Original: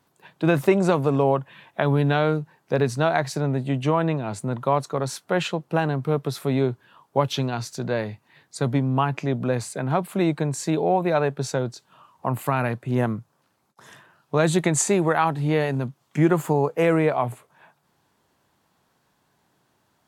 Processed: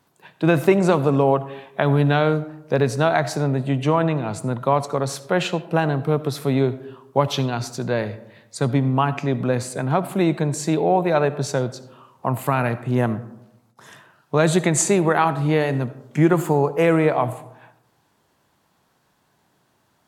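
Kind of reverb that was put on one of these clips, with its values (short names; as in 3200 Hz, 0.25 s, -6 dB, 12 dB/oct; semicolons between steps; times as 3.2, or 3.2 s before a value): digital reverb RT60 0.89 s, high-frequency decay 0.4×, pre-delay 30 ms, DRR 14.5 dB; gain +2.5 dB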